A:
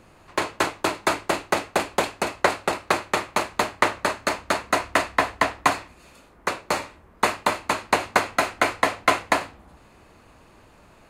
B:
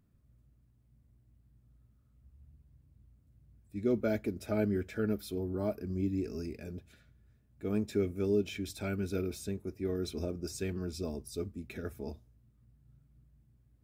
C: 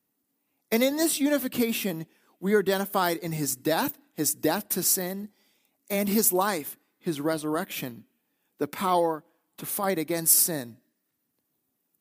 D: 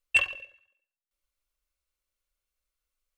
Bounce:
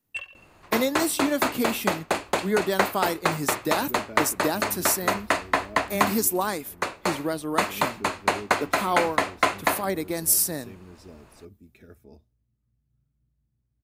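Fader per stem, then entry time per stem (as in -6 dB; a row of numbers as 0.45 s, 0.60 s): -2.5 dB, -9.5 dB, -1.0 dB, -11.5 dB; 0.35 s, 0.05 s, 0.00 s, 0.00 s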